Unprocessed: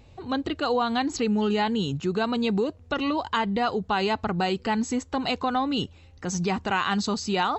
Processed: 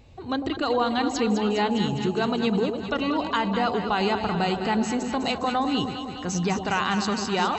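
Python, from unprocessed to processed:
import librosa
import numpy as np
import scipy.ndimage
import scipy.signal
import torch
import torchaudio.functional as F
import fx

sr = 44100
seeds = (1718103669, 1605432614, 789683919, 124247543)

y = x + fx.echo_alternate(x, sr, ms=102, hz=810.0, feedback_pct=82, wet_db=-6.5, dry=0)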